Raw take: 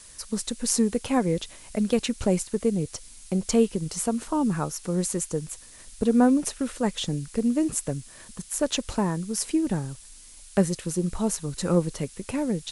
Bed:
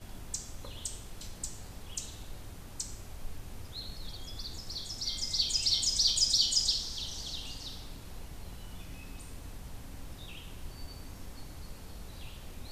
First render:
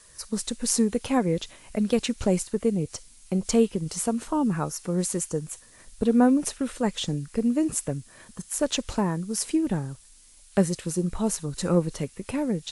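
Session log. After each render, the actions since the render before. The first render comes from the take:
noise reduction from a noise print 6 dB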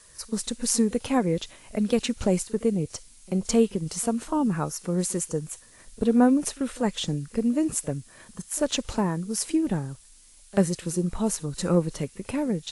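backwards echo 40 ms −22.5 dB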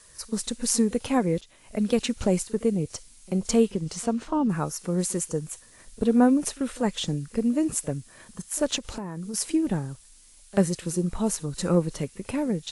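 0:01.41–0:01.82: fade in, from −16.5 dB
0:03.71–0:04.48: low-pass filter 9,500 Hz → 4,100 Hz
0:08.78–0:09.34: downward compressor 5 to 1, threshold −30 dBFS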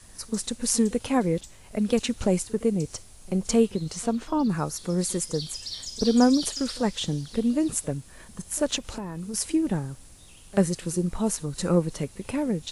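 mix in bed −7.5 dB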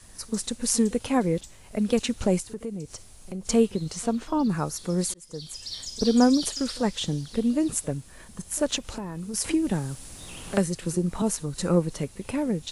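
0:02.40–0:03.47: downward compressor 2 to 1, threshold −37 dBFS
0:05.14–0:05.75: fade in
0:09.44–0:11.22: multiband upward and downward compressor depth 70%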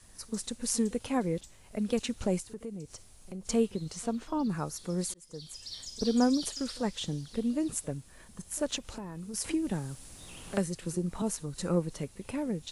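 level −6.5 dB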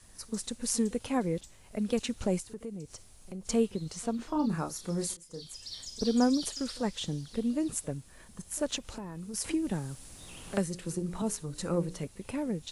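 0:04.16–0:05.45: double-tracking delay 30 ms −6 dB
0:10.71–0:12.07: mains-hum notches 60/120/180/240/300/360/420/480/540/600 Hz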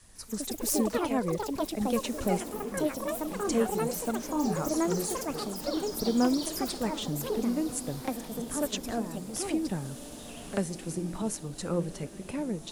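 delay with pitch and tempo change per echo 157 ms, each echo +5 semitones, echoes 3
feedback delay with all-pass diffusion 1,448 ms, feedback 47%, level −13.5 dB

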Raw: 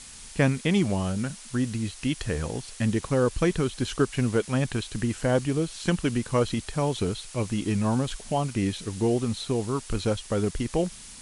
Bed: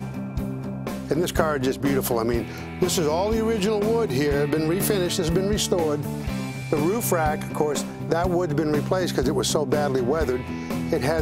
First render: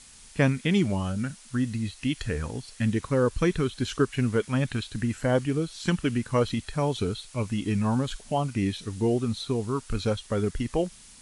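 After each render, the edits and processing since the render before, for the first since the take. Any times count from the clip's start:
noise reduction from a noise print 6 dB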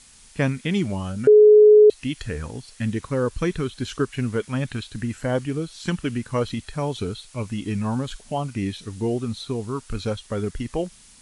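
0:01.27–0:01.90: beep over 423 Hz −7.5 dBFS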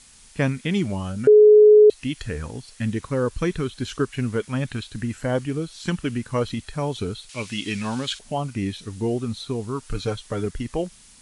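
0:07.29–0:08.19: meter weighting curve D
0:09.82–0:10.46: comb filter 6.6 ms, depth 53%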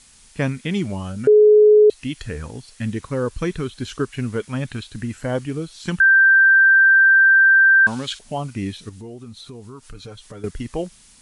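0:06.00–0:07.87: beep over 1,570 Hz −9 dBFS
0:08.89–0:10.44: downward compressor 3 to 1, threshold −37 dBFS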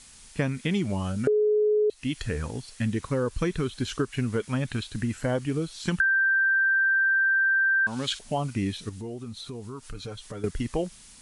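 downward compressor 6 to 1, threshold −22 dBFS, peak gain reduction 11.5 dB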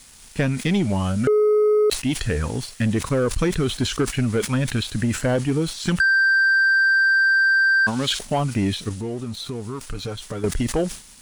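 leveller curve on the samples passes 2
level that may fall only so fast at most 130 dB per second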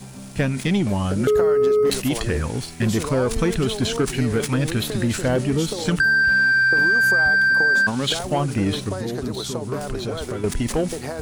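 mix in bed −7.5 dB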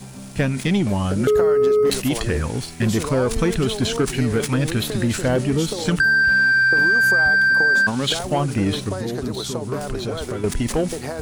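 level +1 dB

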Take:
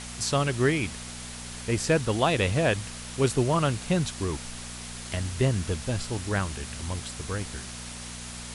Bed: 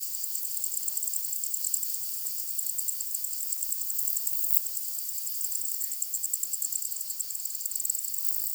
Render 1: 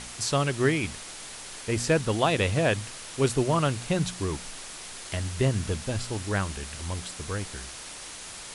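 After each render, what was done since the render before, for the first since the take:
hum removal 60 Hz, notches 4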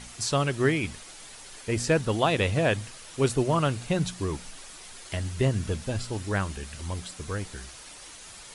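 broadband denoise 7 dB, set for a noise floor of −42 dBFS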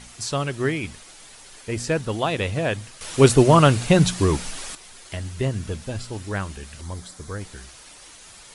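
0:03.01–0:04.75: clip gain +10.5 dB
0:06.81–0:07.41: parametric band 2,700 Hz −10.5 dB 0.44 octaves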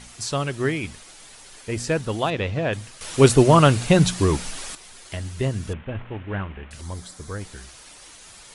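0:02.30–0:02.73: high-frequency loss of the air 130 metres
0:05.73–0:06.71: variable-slope delta modulation 16 kbit/s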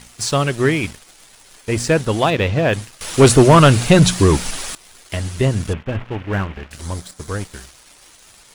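leveller curve on the samples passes 2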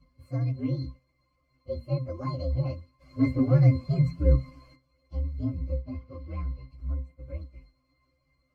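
partials spread apart or drawn together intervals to 124%
resonances in every octave C, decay 0.2 s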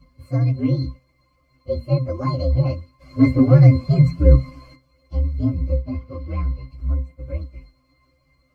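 level +9.5 dB
brickwall limiter −2 dBFS, peak gain reduction 2 dB

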